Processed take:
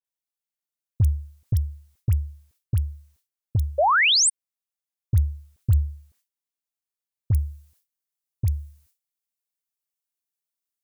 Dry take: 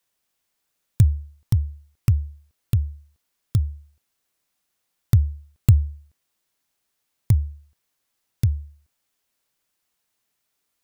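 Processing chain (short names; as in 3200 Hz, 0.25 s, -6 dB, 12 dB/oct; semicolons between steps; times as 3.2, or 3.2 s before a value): gate with hold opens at -52 dBFS; high shelf 5200 Hz +6.5 dB, from 7.33 s +11.5 dB; limiter -12 dBFS, peak gain reduction 10 dB; dispersion highs, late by 47 ms, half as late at 1400 Hz; 3.78–4.3 painted sound rise 530–9500 Hz -18 dBFS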